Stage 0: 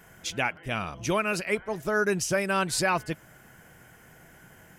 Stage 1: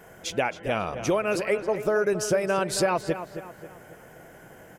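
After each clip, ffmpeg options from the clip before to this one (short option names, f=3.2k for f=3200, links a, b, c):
-filter_complex "[0:a]equalizer=f=520:w=0.9:g=11,acompressor=threshold=-21dB:ratio=4,asplit=2[a][b];[b]adelay=270,lowpass=f=3.2k:p=1,volume=-10.5dB,asplit=2[c][d];[d]adelay=270,lowpass=f=3.2k:p=1,volume=0.44,asplit=2[e][f];[f]adelay=270,lowpass=f=3.2k:p=1,volume=0.44,asplit=2[g][h];[h]adelay=270,lowpass=f=3.2k:p=1,volume=0.44,asplit=2[i][j];[j]adelay=270,lowpass=f=3.2k:p=1,volume=0.44[k];[a][c][e][g][i][k]amix=inputs=6:normalize=0"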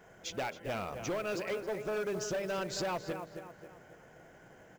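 -af "bandreject=f=80.25:t=h:w=4,bandreject=f=160.5:t=h:w=4,bandreject=f=240.75:t=h:w=4,bandreject=f=321:t=h:w=4,bandreject=f=401.25:t=h:w=4,bandreject=f=481.5:t=h:w=4,bandreject=f=561.75:t=h:w=4,aresample=16000,asoftclip=type=hard:threshold=-22.5dB,aresample=44100,acrusher=bits=5:mode=log:mix=0:aa=0.000001,volume=-8dB"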